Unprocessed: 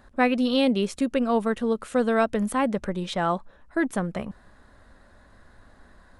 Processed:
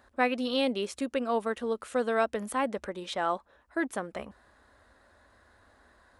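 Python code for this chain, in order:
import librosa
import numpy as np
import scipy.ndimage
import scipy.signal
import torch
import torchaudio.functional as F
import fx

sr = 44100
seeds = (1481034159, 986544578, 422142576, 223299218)

y = scipy.signal.sosfilt(scipy.signal.butter(2, 69.0, 'highpass', fs=sr, output='sos'), x)
y = fx.peak_eq(y, sr, hz=160.0, db=-15.0, octaves=0.95)
y = F.gain(torch.from_numpy(y), -3.5).numpy()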